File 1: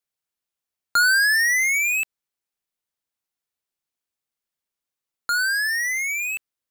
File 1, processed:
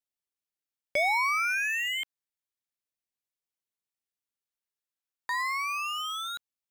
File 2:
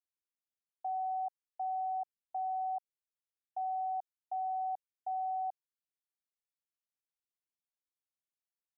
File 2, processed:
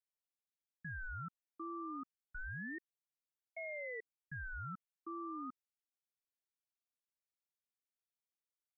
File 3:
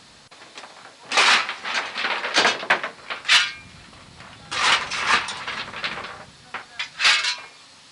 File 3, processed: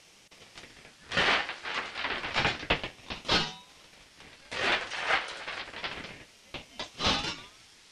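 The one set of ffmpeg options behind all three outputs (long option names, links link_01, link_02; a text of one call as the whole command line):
ffmpeg -i in.wav -filter_complex "[0:a]acrossover=split=3400[link_01][link_02];[link_02]acompressor=threshold=-37dB:ratio=4:attack=1:release=60[link_03];[link_01][link_03]amix=inputs=2:normalize=0,highpass=580,aeval=exprs='val(0)*sin(2*PI*920*n/s+920*0.55/0.29*sin(2*PI*0.29*n/s))':channel_layout=same,volume=-4.5dB" out.wav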